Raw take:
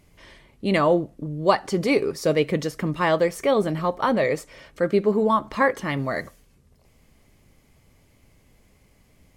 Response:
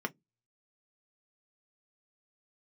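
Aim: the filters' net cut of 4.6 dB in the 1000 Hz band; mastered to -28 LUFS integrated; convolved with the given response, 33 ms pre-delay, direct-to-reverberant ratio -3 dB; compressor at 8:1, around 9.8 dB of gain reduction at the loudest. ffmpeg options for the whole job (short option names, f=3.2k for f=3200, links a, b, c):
-filter_complex "[0:a]equalizer=f=1k:t=o:g=-5.5,acompressor=threshold=-25dB:ratio=8,asplit=2[a][b];[1:a]atrim=start_sample=2205,adelay=33[c];[b][c]afir=irnorm=-1:irlink=0,volume=-1.5dB[d];[a][d]amix=inputs=2:normalize=0,volume=-3.5dB"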